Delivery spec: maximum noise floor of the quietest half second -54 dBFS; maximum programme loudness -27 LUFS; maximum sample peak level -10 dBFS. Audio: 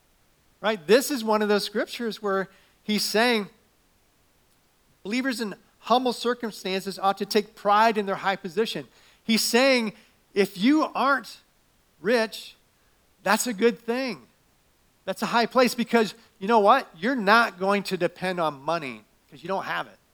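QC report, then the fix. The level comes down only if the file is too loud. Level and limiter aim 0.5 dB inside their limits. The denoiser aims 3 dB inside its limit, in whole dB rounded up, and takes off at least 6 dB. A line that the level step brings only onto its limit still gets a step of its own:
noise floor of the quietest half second -64 dBFS: pass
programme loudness -24.5 LUFS: fail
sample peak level -3.0 dBFS: fail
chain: trim -3 dB; peak limiter -10.5 dBFS

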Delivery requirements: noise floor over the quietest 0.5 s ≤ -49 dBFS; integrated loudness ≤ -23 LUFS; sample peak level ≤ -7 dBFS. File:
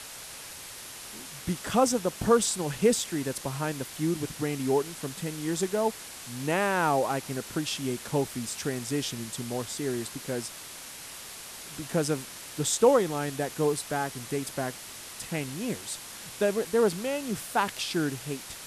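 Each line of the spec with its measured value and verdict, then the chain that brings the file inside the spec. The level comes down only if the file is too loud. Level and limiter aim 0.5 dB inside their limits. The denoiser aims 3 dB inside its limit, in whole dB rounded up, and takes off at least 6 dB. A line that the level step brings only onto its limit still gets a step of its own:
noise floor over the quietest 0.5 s -43 dBFS: fail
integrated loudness -29.0 LUFS: pass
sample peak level -9.5 dBFS: pass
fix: noise reduction 9 dB, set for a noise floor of -43 dBFS

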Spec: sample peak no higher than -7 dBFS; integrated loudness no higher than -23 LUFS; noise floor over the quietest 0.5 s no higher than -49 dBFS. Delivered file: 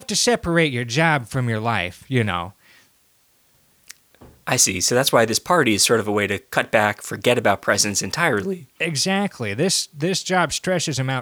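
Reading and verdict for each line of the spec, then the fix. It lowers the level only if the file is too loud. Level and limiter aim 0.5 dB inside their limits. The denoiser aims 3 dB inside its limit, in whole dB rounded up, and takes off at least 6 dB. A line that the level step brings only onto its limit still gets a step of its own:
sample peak -2.0 dBFS: fail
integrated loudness -19.5 LUFS: fail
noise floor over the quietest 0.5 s -60 dBFS: pass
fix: trim -4 dB; peak limiter -7.5 dBFS

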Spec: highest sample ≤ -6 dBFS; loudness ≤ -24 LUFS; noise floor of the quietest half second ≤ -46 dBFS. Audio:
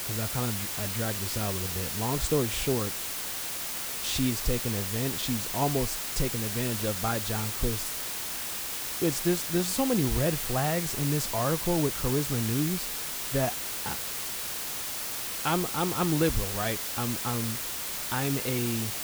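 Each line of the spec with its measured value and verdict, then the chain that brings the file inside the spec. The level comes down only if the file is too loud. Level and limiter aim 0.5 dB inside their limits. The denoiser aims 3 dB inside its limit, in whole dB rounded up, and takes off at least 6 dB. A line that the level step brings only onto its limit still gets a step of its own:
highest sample -12.0 dBFS: pass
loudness -28.5 LUFS: pass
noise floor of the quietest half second -34 dBFS: fail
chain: noise reduction 15 dB, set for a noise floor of -34 dBFS

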